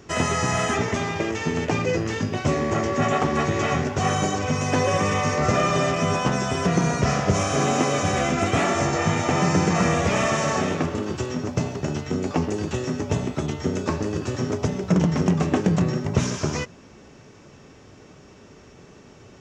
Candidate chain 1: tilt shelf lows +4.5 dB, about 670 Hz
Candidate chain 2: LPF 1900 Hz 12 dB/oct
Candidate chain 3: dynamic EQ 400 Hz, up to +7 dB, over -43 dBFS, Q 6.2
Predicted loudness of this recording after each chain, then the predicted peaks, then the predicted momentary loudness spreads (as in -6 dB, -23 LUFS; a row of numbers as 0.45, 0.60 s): -21.0, -24.0, -22.0 LUFS; -3.0, -6.0, -4.5 dBFS; 6, 6, 6 LU